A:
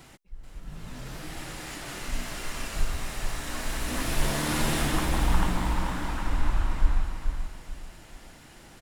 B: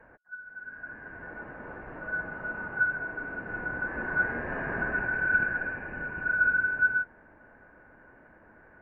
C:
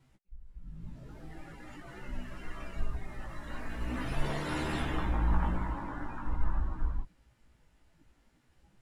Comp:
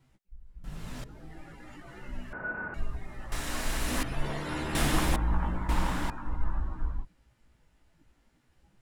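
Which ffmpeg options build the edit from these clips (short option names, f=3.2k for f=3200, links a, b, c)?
-filter_complex "[0:a]asplit=4[a][b][c][d];[2:a]asplit=6[e][f][g][h][i][j];[e]atrim=end=0.642[k];[a]atrim=start=0.638:end=1.042[l];[f]atrim=start=1.038:end=2.332[m];[1:a]atrim=start=2.328:end=2.742[n];[g]atrim=start=2.738:end=3.322[o];[b]atrim=start=3.318:end=4.032[p];[h]atrim=start=4.028:end=4.752[q];[c]atrim=start=4.748:end=5.162[r];[i]atrim=start=5.158:end=5.692[s];[d]atrim=start=5.688:end=6.102[t];[j]atrim=start=6.098[u];[k][l]acrossfade=d=0.004:c1=hsin:c2=hsin[v];[v][m]acrossfade=d=0.004:c1=hsin:c2=hsin[w];[w][n]acrossfade=d=0.004:c1=hsin:c2=hsin[x];[x][o]acrossfade=d=0.004:c1=hsin:c2=hsin[y];[y][p]acrossfade=d=0.004:c1=hsin:c2=hsin[z];[z][q]acrossfade=d=0.004:c1=hsin:c2=hsin[aa];[aa][r]acrossfade=d=0.004:c1=hsin:c2=hsin[ab];[ab][s]acrossfade=d=0.004:c1=hsin:c2=hsin[ac];[ac][t]acrossfade=d=0.004:c1=hsin:c2=hsin[ad];[ad][u]acrossfade=d=0.004:c1=hsin:c2=hsin"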